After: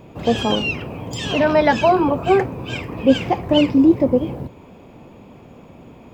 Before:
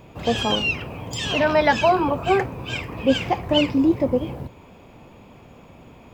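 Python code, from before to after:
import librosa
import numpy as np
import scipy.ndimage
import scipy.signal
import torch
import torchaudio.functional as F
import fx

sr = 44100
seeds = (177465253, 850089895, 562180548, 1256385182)

y = fx.peak_eq(x, sr, hz=280.0, db=6.5, octaves=2.8)
y = F.gain(torch.from_numpy(y), -1.0).numpy()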